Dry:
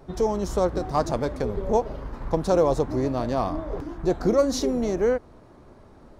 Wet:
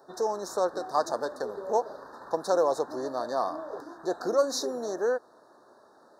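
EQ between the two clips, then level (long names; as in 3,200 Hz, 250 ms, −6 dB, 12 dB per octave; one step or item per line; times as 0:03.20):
high-pass filter 540 Hz 12 dB per octave
Chebyshev band-stop filter 1,800–3,700 Hz, order 5
0.0 dB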